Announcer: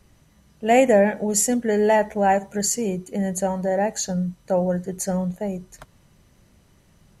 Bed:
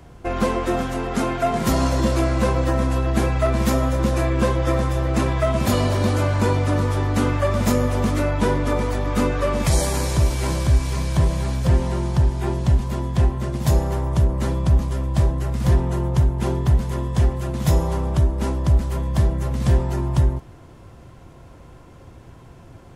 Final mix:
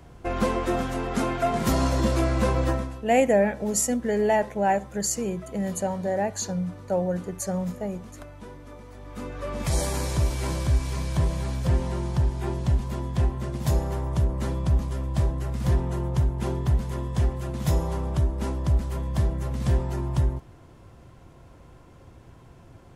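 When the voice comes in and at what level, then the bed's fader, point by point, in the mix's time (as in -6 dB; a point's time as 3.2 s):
2.40 s, -4.0 dB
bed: 2.71 s -3.5 dB
3.06 s -23 dB
8.84 s -23 dB
9.79 s -5.5 dB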